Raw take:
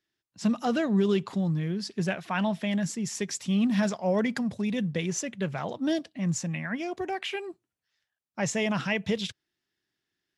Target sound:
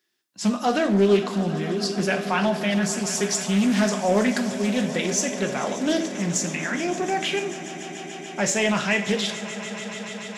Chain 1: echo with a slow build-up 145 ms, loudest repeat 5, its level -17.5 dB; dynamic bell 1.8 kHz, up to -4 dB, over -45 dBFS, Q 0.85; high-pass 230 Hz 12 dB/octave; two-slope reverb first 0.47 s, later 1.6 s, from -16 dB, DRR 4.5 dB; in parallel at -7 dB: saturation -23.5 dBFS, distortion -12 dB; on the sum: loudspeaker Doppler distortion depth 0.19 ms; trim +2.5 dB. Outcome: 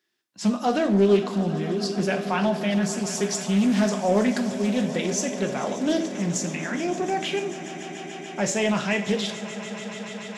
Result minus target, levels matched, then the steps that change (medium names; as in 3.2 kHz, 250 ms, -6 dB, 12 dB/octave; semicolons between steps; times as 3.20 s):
2 kHz band -3.0 dB; 8 kHz band -3.0 dB
add after high-pass: treble shelf 5.3 kHz +6 dB; remove: dynamic bell 1.8 kHz, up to -4 dB, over -45 dBFS, Q 0.85